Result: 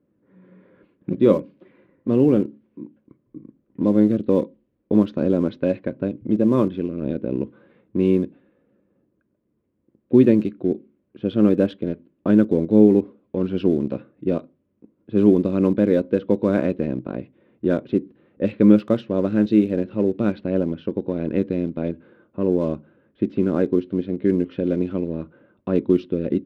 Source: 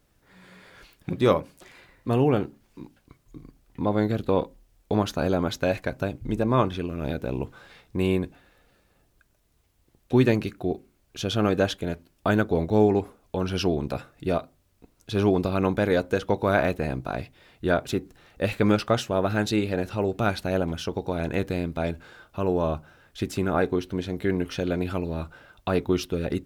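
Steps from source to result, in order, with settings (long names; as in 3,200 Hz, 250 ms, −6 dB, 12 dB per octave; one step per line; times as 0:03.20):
loudspeaker in its box 160–3,700 Hz, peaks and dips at 210 Hz +7 dB, 310 Hz +4 dB, 450 Hz −8 dB, 670 Hz −7 dB, 1,000 Hz +9 dB
in parallel at −11.5 dB: centre clipping without the shift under −24.5 dBFS
on the sum: low shelf with overshoot 670 Hz +9.5 dB, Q 3
low-pass that shuts in the quiet parts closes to 1,600 Hz, open at −4 dBFS
level −8 dB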